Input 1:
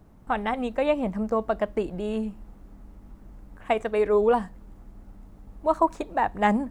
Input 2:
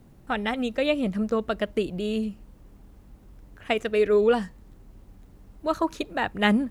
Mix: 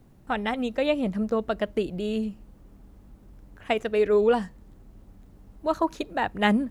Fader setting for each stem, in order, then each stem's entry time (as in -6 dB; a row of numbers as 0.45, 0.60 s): -11.0, -3.0 dB; 0.00, 0.00 s